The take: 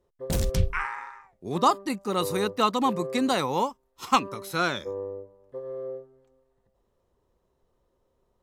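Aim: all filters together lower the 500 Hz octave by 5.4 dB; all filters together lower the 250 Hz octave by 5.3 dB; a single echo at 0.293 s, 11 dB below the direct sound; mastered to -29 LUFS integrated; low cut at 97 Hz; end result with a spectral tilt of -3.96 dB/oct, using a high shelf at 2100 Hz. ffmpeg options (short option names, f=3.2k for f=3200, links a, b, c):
-af "highpass=97,equalizer=f=250:t=o:g=-5,equalizer=f=500:t=o:g=-4.5,highshelf=f=2.1k:g=-8,aecho=1:1:293:0.282,volume=2dB"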